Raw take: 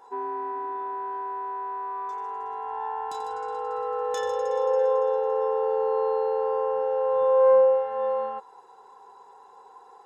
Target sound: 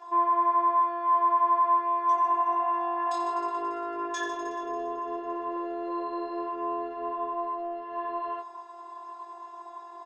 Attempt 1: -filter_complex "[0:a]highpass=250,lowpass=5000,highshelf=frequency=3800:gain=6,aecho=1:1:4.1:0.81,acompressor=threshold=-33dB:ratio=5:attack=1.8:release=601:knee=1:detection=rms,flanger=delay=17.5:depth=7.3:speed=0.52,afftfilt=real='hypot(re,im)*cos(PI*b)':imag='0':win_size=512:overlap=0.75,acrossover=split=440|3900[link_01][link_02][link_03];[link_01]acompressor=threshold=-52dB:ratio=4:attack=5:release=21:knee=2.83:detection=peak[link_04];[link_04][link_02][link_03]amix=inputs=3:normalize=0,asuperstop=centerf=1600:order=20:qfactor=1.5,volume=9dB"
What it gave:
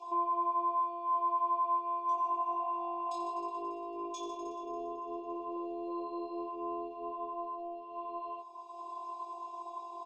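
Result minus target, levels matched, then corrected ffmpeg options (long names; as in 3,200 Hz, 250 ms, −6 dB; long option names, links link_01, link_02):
2,000 Hz band −13.5 dB; downward compressor: peak gain reduction +8 dB
-filter_complex "[0:a]highpass=250,lowpass=5000,highshelf=frequency=3800:gain=6,aecho=1:1:4.1:0.81,acompressor=threshold=-23dB:ratio=5:attack=1.8:release=601:knee=1:detection=rms,flanger=delay=17.5:depth=7.3:speed=0.52,afftfilt=real='hypot(re,im)*cos(PI*b)':imag='0':win_size=512:overlap=0.75,acrossover=split=440|3900[link_01][link_02][link_03];[link_01]acompressor=threshold=-52dB:ratio=4:attack=5:release=21:knee=2.83:detection=peak[link_04];[link_04][link_02][link_03]amix=inputs=3:normalize=0,volume=9dB"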